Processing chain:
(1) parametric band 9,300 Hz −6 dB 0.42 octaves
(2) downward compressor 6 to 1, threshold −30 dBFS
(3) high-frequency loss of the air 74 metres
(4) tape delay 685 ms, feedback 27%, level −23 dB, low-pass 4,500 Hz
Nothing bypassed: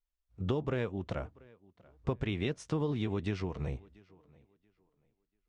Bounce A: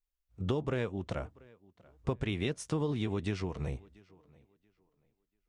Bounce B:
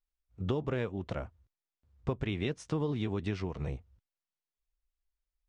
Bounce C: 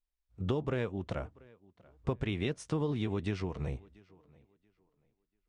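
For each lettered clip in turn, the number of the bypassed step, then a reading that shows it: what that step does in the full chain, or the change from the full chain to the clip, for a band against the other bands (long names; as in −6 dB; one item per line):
3, 8 kHz band +6.0 dB
4, echo-to-direct ratio −36.5 dB to none audible
1, 8 kHz band +2.0 dB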